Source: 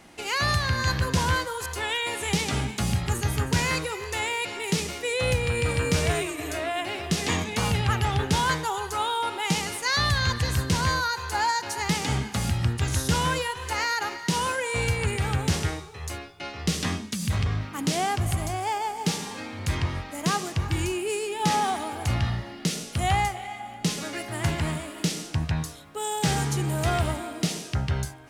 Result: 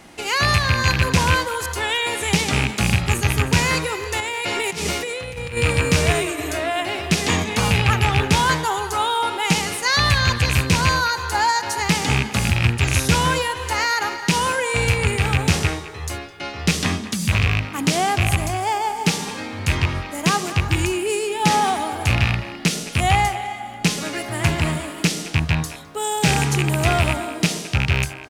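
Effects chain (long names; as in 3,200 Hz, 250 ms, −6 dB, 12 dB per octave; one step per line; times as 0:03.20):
loose part that buzzes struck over −23 dBFS, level −14 dBFS
0:04.20–0:05.57: compressor whose output falls as the input rises −33 dBFS, ratio −1
far-end echo of a speakerphone 210 ms, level −13 dB
level +6 dB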